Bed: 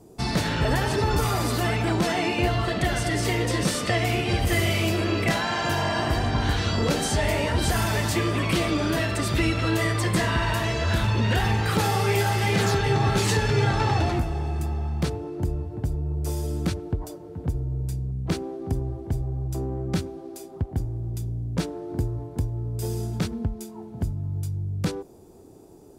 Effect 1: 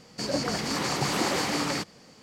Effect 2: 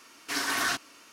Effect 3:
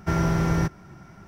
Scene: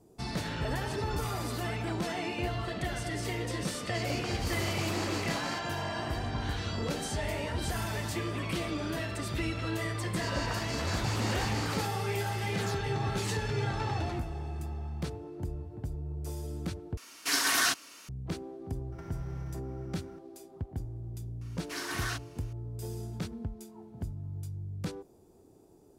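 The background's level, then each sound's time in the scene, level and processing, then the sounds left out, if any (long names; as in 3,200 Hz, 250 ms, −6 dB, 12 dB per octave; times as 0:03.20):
bed −10 dB
0:03.76: mix in 1 −9.5 dB
0:10.03: mix in 1 −8.5 dB
0:16.97: overwrite with 2 −1.5 dB + high-shelf EQ 3,100 Hz +7.5 dB
0:18.92: mix in 3 −8.5 dB + downward compressor 10 to 1, threshold −35 dBFS
0:21.41: mix in 2 −8 dB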